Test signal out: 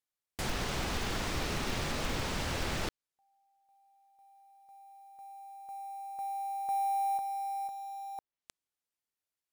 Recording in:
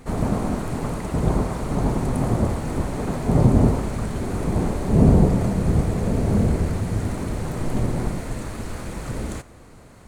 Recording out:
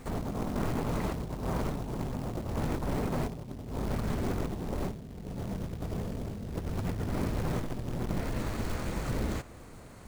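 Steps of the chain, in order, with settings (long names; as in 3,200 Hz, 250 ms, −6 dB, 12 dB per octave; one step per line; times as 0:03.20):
treble cut that deepens with the level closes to 1,700 Hz, closed at −18.5 dBFS
floating-point word with a short mantissa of 2 bits
compressor whose output falls as the input rises −27 dBFS, ratio −1
level −7 dB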